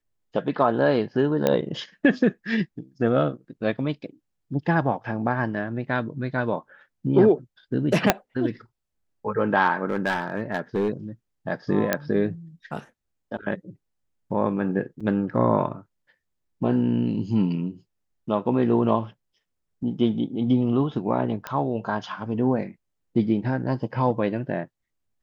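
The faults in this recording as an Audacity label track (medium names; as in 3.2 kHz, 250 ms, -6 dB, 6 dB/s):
1.470000	1.470000	pop -8 dBFS
8.100000	8.100000	pop 0 dBFS
9.860000	10.900000	clipped -18.5 dBFS
11.930000	11.930000	pop -6 dBFS
15.000000	15.010000	dropout 5.4 ms
21.470000	21.470000	pop -15 dBFS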